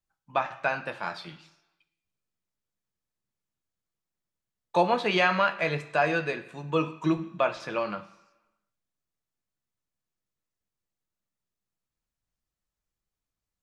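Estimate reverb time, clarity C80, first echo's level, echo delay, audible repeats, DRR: 1.1 s, 17.0 dB, no echo audible, no echo audible, no echo audible, 7.5 dB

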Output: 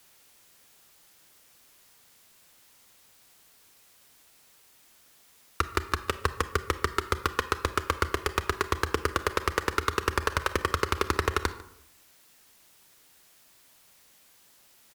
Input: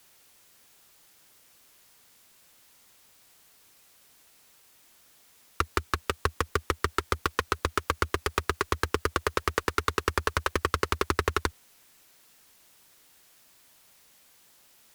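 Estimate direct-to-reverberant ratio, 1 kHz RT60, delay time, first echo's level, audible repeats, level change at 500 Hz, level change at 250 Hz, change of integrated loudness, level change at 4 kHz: 11.5 dB, 0.70 s, 148 ms, −21.5 dB, 1, +0.5 dB, +0.5 dB, +0.5 dB, 0.0 dB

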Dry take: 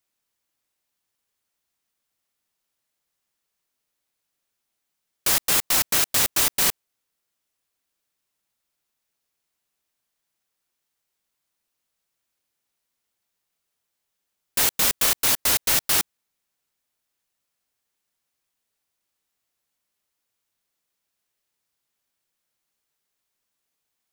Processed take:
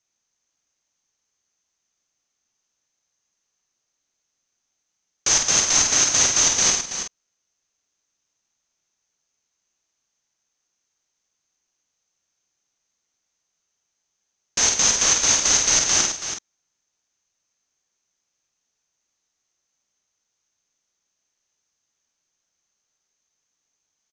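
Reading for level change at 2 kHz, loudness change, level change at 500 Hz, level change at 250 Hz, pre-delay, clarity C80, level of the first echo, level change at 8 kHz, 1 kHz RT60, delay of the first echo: +2.0 dB, +3.0 dB, +2.0 dB, +2.0 dB, no reverb audible, no reverb audible, −4.5 dB, +8.5 dB, no reverb audible, 49 ms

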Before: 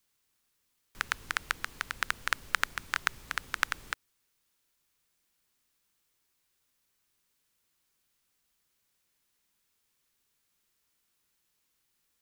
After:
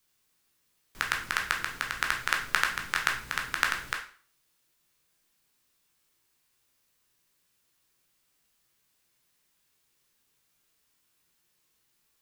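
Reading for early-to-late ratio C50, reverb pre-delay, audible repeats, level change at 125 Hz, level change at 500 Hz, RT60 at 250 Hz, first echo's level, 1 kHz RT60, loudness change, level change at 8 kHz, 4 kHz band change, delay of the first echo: 8.5 dB, 12 ms, no echo audible, +4.5 dB, +4.5 dB, 0.40 s, no echo audible, 0.45 s, +4.0 dB, +3.5 dB, +4.0 dB, no echo audible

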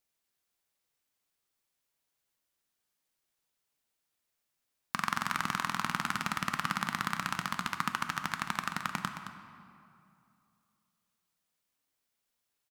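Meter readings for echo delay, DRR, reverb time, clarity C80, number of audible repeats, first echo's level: 218 ms, 5.5 dB, 2.6 s, 7.0 dB, 1, −10.5 dB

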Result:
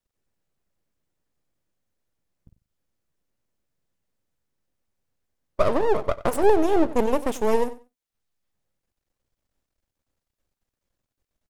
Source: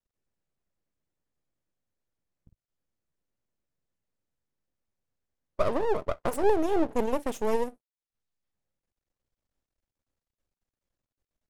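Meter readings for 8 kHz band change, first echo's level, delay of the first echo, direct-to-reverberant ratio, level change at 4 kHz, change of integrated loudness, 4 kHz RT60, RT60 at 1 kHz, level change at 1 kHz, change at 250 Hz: +5.5 dB, −17.0 dB, 93 ms, no reverb audible, +5.5 dB, +5.5 dB, no reverb audible, no reverb audible, +5.5 dB, +5.5 dB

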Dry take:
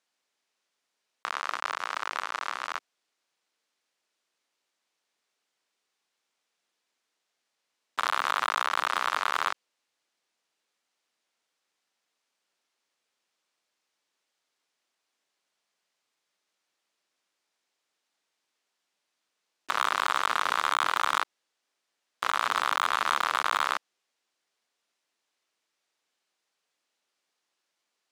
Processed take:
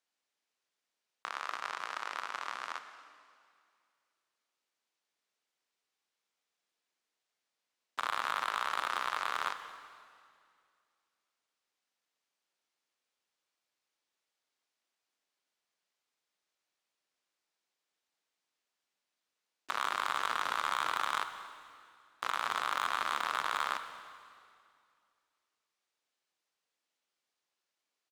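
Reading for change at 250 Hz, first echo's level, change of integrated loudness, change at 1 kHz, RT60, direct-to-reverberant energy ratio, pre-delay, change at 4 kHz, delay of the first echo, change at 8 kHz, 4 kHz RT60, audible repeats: −6.5 dB, −20.5 dB, −6.5 dB, −6.5 dB, 2.3 s, 8.5 dB, 29 ms, −6.5 dB, 233 ms, −6.5 dB, 2.1 s, 1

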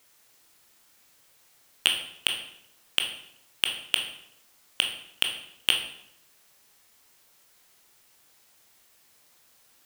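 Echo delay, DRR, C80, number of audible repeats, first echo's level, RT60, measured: no echo audible, 2.5 dB, 10.0 dB, no echo audible, no echo audible, 0.75 s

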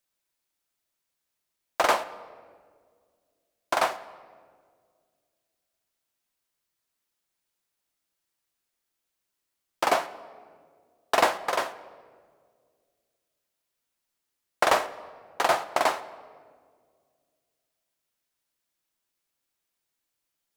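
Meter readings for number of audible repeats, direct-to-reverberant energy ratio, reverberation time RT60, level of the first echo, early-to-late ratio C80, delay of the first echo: no echo audible, 11.5 dB, 1.9 s, no echo audible, 17.0 dB, no echo audible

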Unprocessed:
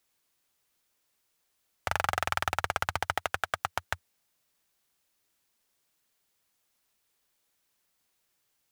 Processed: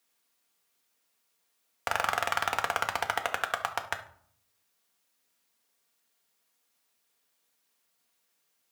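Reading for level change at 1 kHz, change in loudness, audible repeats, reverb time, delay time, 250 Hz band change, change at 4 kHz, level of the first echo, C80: +1.0 dB, +1.0 dB, no echo audible, 0.60 s, no echo audible, −1.0 dB, +1.0 dB, no echo audible, 17.0 dB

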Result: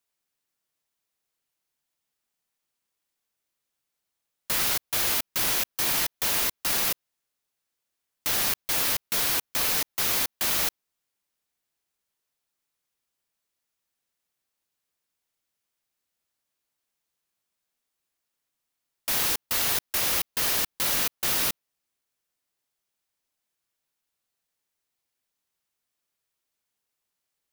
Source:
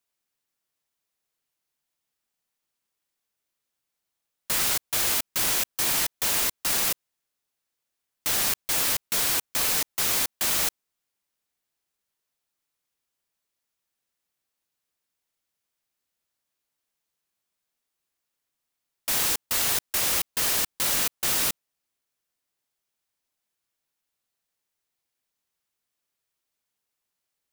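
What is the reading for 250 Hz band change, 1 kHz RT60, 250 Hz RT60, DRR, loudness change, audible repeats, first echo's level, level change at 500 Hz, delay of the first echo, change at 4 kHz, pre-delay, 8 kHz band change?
0.0 dB, no reverb audible, no reverb audible, no reverb audible, −1.0 dB, no echo audible, no echo audible, 0.0 dB, no echo audible, −0.5 dB, no reverb audible, −2.5 dB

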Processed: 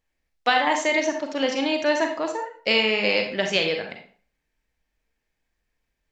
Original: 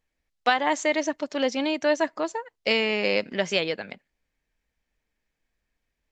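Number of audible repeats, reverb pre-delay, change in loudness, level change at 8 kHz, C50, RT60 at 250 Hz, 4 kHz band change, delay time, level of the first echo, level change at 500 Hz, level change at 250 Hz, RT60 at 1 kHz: no echo audible, 35 ms, +2.5 dB, +2.0 dB, 6.0 dB, 0.45 s, +4.5 dB, no echo audible, no echo audible, +1.5 dB, +1.0 dB, 0.45 s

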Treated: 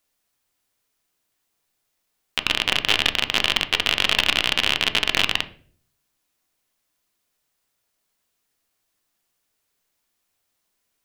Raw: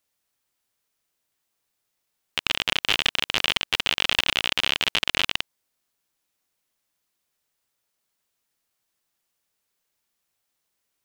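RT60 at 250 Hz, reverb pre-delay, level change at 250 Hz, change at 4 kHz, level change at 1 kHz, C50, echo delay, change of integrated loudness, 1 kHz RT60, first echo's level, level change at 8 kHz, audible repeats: 0.65 s, 3 ms, +5.0 dB, +3.0 dB, +3.5 dB, 18.5 dB, no echo audible, +3.5 dB, 0.40 s, no echo audible, +3.0 dB, no echo audible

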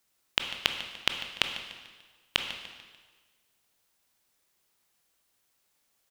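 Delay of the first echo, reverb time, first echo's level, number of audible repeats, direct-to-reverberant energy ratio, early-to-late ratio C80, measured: 147 ms, 1.4 s, −15.0 dB, 3, 5.0 dB, 7.5 dB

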